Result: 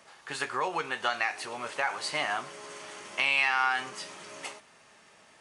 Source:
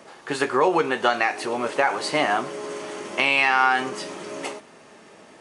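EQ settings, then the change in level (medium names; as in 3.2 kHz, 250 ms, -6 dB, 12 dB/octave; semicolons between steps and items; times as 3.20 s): peaking EQ 320 Hz -13 dB 2.3 oct; -4.5 dB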